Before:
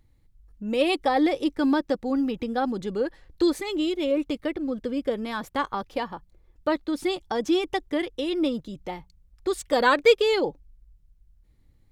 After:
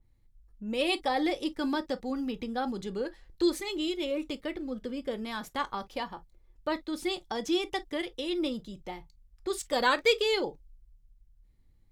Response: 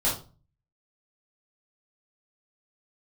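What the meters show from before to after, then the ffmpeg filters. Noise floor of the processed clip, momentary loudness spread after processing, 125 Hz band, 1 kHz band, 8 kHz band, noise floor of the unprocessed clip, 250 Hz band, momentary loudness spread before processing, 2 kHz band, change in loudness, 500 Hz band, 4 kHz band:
−63 dBFS, 12 LU, −5.5 dB, −5.5 dB, −0.5 dB, −61 dBFS, −7.0 dB, 11 LU, −4.0 dB, −6.0 dB, −7.0 dB, −1.0 dB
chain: -filter_complex "[0:a]asplit=2[link_01][link_02];[1:a]atrim=start_sample=2205,atrim=end_sample=3528,asetrate=61740,aresample=44100[link_03];[link_02][link_03]afir=irnorm=-1:irlink=0,volume=-19dB[link_04];[link_01][link_04]amix=inputs=2:normalize=0,adynamicequalizer=threshold=0.0112:dfrequency=2200:dqfactor=0.7:tfrequency=2200:tqfactor=0.7:attack=5:release=100:ratio=0.375:range=3:mode=boostabove:tftype=highshelf,volume=-7dB"

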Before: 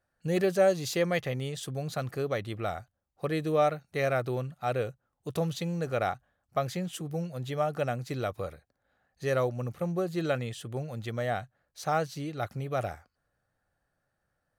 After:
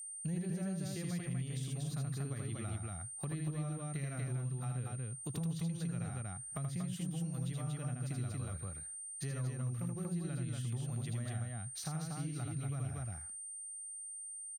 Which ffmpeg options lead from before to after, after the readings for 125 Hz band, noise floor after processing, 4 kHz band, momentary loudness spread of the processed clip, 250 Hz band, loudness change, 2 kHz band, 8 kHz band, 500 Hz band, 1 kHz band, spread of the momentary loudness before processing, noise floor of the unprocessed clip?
−1.5 dB, −47 dBFS, −10.0 dB, 4 LU, −5.0 dB, −8.5 dB, −15.0 dB, +4.5 dB, −21.0 dB, −18.0 dB, 10 LU, −81 dBFS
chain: -filter_complex "[0:a]equalizer=frequency=520:width_type=o:width=0.92:gain=-10.5,acrossover=split=240[link_01][link_02];[link_02]acompressor=threshold=-48dB:ratio=6[link_03];[link_01][link_03]amix=inputs=2:normalize=0,asoftclip=type=tanh:threshold=-26dB,asplit=2[link_04][link_05];[link_05]aecho=0:1:78.72|236.2:0.708|0.794[link_06];[link_04][link_06]amix=inputs=2:normalize=0,agate=range=-33dB:threshold=-58dB:ratio=3:detection=peak,aeval=exprs='val(0)+0.00398*sin(2*PI*8800*n/s)':channel_layout=same,acompressor=threshold=-44dB:ratio=2.5,volume=4.5dB"

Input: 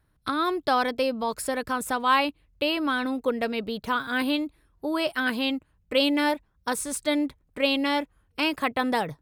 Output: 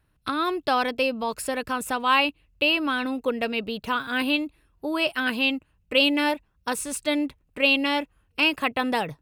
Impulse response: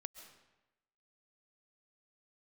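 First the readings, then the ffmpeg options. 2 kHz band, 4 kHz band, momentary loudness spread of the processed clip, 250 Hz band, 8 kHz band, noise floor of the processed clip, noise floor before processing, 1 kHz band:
+3.5 dB, +3.5 dB, 9 LU, 0.0 dB, 0.0 dB, −68 dBFS, −68 dBFS, 0.0 dB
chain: -af "equalizer=frequency=2700:width_type=o:width=0.26:gain=10"

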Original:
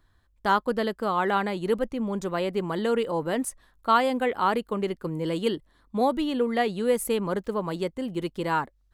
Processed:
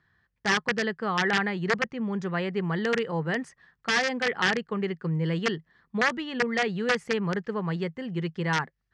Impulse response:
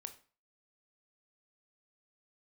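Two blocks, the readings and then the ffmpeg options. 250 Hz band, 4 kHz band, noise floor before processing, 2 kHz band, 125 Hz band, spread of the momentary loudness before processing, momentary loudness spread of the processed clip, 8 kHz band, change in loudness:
−1.5 dB, +4.0 dB, −65 dBFS, +7.5 dB, +5.0 dB, 7 LU, 7 LU, −1.0 dB, −1.0 dB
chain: -af "aeval=exprs='(mod(5.96*val(0)+1,2)-1)/5.96':channel_layout=same,highpass=120,equalizer=frequency=160:width_type=q:width=4:gain=9,equalizer=frequency=290:width_type=q:width=4:gain=-10,equalizer=frequency=590:width_type=q:width=4:gain=-8,equalizer=frequency=980:width_type=q:width=4:gain=-4,equalizer=frequency=1800:width_type=q:width=4:gain=9,equalizer=frequency=3800:width_type=q:width=4:gain=-7,lowpass=frequency=5300:width=0.5412,lowpass=frequency=5300:width=1.3066"

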